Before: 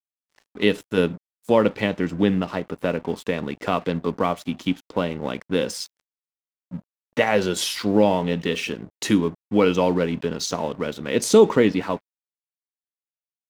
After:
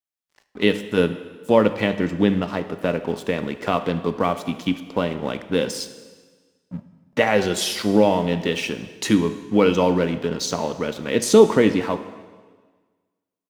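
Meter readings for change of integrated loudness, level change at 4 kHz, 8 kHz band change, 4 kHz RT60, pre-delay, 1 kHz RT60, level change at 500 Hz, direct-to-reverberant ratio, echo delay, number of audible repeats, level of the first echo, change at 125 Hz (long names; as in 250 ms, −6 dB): +1.5 dB, +1.5 dB, +1.5 dB, 1.4 s, 4 ms, 1.5 s, +1.5 dB, 10.0 dB, 75 ms, 1, −20.0 dB, +1.5 dB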